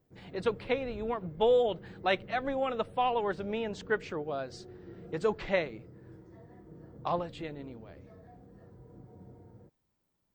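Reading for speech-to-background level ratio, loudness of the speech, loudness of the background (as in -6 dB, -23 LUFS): 19.0 dB, -32.5 LUFS, -51.5 LUFS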